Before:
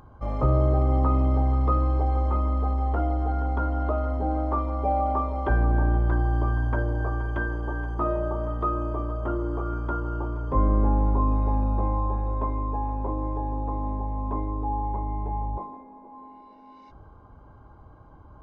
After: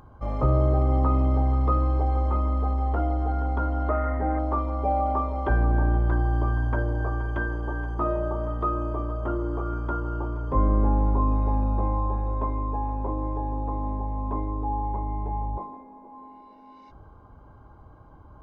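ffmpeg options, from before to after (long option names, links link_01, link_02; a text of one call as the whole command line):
ffmpeg -i in.wav -filter_complex "[0:a]asettb=1/sr,asplit=3[link_01][link_02][link_03];[link_01]atrim=end=3.894[link_04];[link_02]atrim=start=3.89:end=4.39,asetpts=PTS-STARTPTS,afade=type=in:duration=0.004:curve=qsin,afade=type=out:start_time=0.496:duration=0.004:curve=qsin,lowpass=frequency=1900:width_type=q:width=11[link_05];[link_03]atrim=start=4.386[link_06];[link_04][link_05]acrossfade=duration=0.004:curve1=hsin:curve2=qsin[link_07];[link_07][link_06]acrossfade=duration=0.004:curve1=qsin:curve2=hsin" out.wav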